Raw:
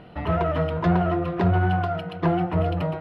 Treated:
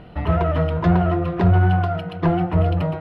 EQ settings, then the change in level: low shelf 86 Hz +11 dB; +1.5 dB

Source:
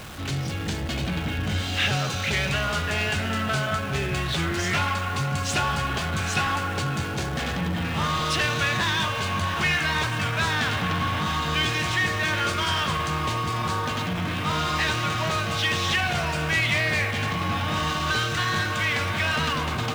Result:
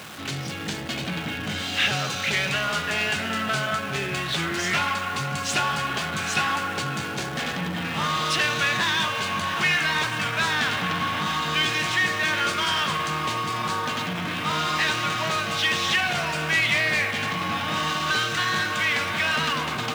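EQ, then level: Chebyshev high-pass 170 Hz, order 2; tilt shelf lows -5.5 dB, about 1300 Hz; high shelf 2300 Hz -7.5 dB; +4.0 dB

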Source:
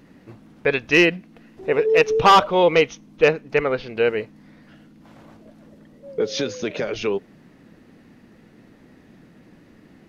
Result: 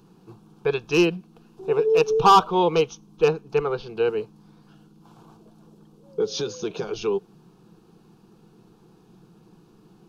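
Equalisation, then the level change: fixed phaser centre 390 Hz, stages 8; 0.0 dB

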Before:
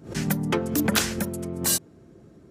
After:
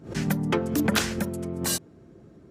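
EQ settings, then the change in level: high shelf 6200 Hz -7.5 dB; 0.0 dB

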